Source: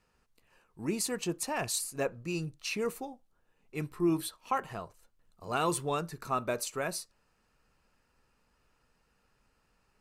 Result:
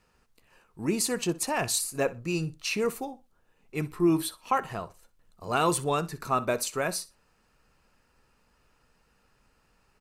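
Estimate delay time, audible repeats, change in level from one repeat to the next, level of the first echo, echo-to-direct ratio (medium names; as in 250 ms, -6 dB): 62 ms, 2, -14.5 dB, -18.5 dB, -18.5 dB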